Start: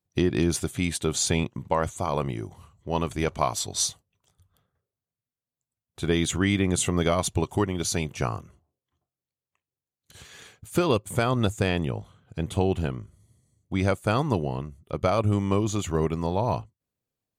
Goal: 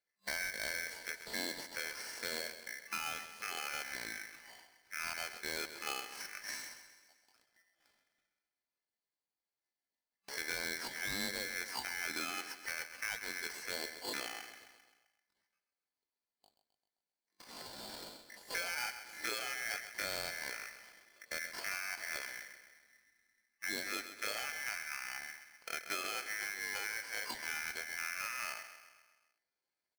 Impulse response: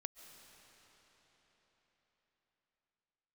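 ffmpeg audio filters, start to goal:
-filter_complex "[0:a]highpass=150,bandreject=f=390:w=12,deesser=0.25,superequalizer=9b=0.251:12b=3.16:14b=0.316,acompressor=threshold=-34dB:ratio=4,highshelf=f=5.1k:t=q:w=1.5:g=-11,atempo=0.58,asoftclip=type=hard:threshold=-26dB,asplit=2[a][b];[b]aecho=0:1:131|262|393|524|655|786:0.282|0.152|0.0822|0.0444|0.024|0.0129[c];[a][c]amix=inputs=2:normalize=0,aeval=exprs='val(0)*sgn(sin(2*PI*1900*n/s))':c=same,volume=-4.5dB"

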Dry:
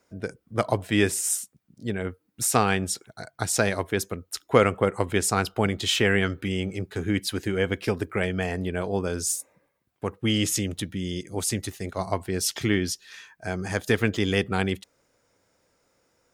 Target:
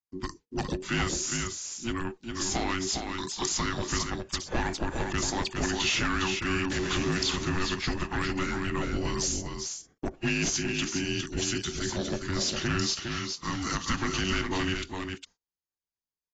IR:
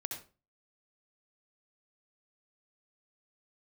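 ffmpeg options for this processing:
-filter_complex "[0:a]asettb=1/sr,asplit=3[a][b][c];[a]atrim=end=6.704[d];[b]atrim=start=6.7:end=7.35,asetpts=PTS-STARTPTS,afade=t=in:d=0.004:c=qsin,afade=t=out:st=0.646:d=0.004:c=qsin,aeval=exprs='val(0)+0.5*0.0398*sgn(val(0))':c=same[e];[c]atrim=start=7.346[f];[d][e]acrossfade=d=0.004:c1=hsin:c2=qsin[g];[g][f]acrossfade=d=0.004:c1=qsin:c2=hsin,agate=range=-40dB:threshold=-46dB:ratio=16:detection=peak,asettb=1/sr,asplit=3[h][i][j];[h]atrim=end=9.004[k];[i]atrim=start=9:end=10.22,asetpts=PTS-STARTPTS,afade=t=in:d=0.004:c=qsin,afade=t=out:st=1.216:d=0.004:c=qsin,equalizer=f=750:w=2.3:g=14[l];[j]atrim=start=10.216[m];[k][l]acrossfade=d=0.004:c1=hsin:c2=qsin[n];[n][m]acrossfade=d=0.004:c1=qsin:c2=hsin,asettb=1/sr,asplit=3[o][p][q];[o]atrim=end=13.064[r];[p]atrim=start=13.06:end=14.01,asetpts=PTS-STARTPTS,afade=t=in:d=0.004:c=qsin,afade=t=out:st=0.946:d=0.004:c=qsin,highpass=f=170:w=0.5412,highpass=f=170:w=1.3066[s];[q]atrim=start=14.006[t];[r][s]acrossfade=d=0.004:c1=hsin:c2=qsin[u];[u][t]acrossfade=d=0.004:c1=qsin:c2=hsin,highshelf=f=2.4k:g=11.5,acompressor=threshold=-25dB:ratio=2,afreqshift=-470,asoftclip=type=tanh:threshold=-22.5dB,aecho=1:1:408:0.531" -ar 16000 -c:a aac -b:a 24k

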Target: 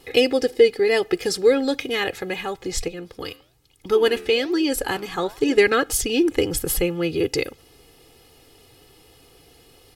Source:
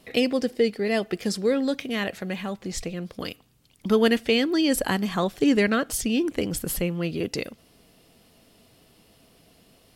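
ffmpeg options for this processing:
-filter_complex "[0:a]aecho=1:1:2.4:0.79,asettb=1/sr,asplit=3[a][b][c];[a]atrim=end=2.884[d];[b]atrim=start=2.88:end=5.58,asetpts=PTS-STARTPTS,afade=t=in:d=0.004:c=qsin,afade=t=out:st=2.696:d=0.004:c=qsin,flanger=delay=3.4:depth=9.2:regen=-88:speed=1.1:shape=sinusoidal[e];[c]atrim=start=5.576[f];[d][e]acrossfade=d=0.004:c1=hsin:c2=qsin[g];[g][f]acrossfade=d=0.004:c1=qsin:c2=hsin,volume=3.5dB"

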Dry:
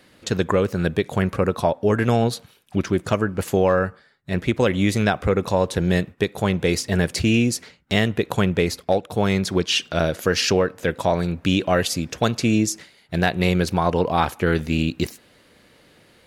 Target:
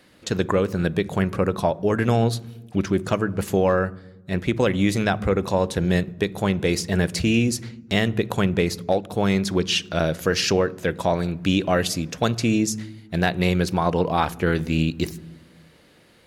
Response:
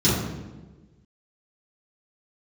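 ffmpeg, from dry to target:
-filter_complex "[0:a]asplit=2[a][b];[1:a]atrim=start_sample=2205[c];[b][c]afir=irnorm=-1:irlink=0,volume=-38.5dB[d];[a][d]amix=inputs=2:normalize=0,volume=-1.5dB"

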